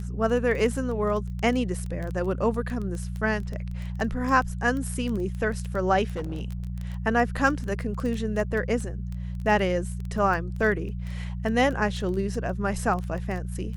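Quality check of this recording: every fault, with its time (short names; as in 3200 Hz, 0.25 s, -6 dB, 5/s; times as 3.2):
crackle 11/s -29 dBFS
hum 60 Hz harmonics 3 -32 dBFS
6.1–6.7 clipped -26.5 dBFS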